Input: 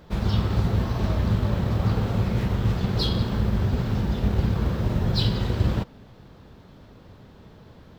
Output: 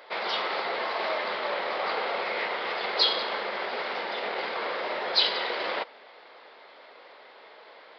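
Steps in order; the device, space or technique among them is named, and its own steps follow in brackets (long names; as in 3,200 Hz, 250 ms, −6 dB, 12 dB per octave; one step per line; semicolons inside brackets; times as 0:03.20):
musical greeting card (downsampling to 11,025 Hz; high-pass filter 520 Hz 24 dB per octave; parametric band 2,100 Hz +9 dB 0.27 octaves)
level +6 dB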